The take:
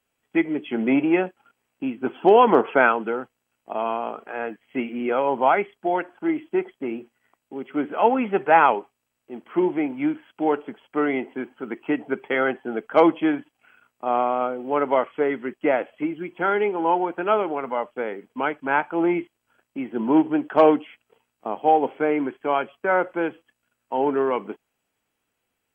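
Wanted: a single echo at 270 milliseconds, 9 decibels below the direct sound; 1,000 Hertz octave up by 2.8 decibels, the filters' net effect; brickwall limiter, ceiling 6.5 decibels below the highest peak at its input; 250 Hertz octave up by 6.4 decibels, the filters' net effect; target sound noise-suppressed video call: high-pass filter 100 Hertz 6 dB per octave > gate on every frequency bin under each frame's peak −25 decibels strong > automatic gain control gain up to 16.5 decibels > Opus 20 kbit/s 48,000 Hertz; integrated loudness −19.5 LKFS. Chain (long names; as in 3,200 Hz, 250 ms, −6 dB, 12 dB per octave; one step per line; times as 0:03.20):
parametric band 250 Hz +9 dB
parametric band 1,000 Hz +3 dB
brickwall limiter −6.5 dBFS
high-pass filter 100 Hz 6 dB per octave
single-tap delay 270 ms −9 dB
gate on every frequency bin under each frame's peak −25 dB strong
automatic gain control gain up to 16.5 dB
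level −1.5 dB
Opus 20 kbit/s 48,000 Hz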